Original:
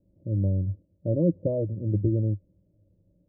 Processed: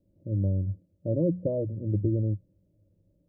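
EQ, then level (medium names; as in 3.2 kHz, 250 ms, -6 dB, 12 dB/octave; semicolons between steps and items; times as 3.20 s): hum notches 60/120/180 Hz; -1.5 dB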